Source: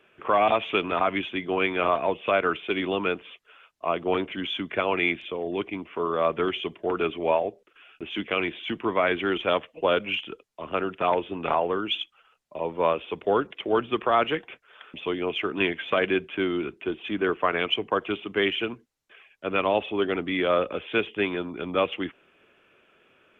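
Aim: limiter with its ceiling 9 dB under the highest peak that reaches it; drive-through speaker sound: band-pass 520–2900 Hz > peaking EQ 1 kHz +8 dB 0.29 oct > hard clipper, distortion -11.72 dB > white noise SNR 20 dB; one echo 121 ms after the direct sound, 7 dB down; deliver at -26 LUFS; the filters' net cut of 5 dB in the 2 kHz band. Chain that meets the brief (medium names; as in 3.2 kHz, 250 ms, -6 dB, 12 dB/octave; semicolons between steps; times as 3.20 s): peaking EQ 2 kHz -5.5 dB; peak limiter -20 dBFS; band-pass 520–2900 Hz; peaking EQ 1 kHz +8 dB 0.29 oct; delay 121 ms -7 dB; hard clipper -27 dBFS; white noise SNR 20 dB; trim +8.5 dB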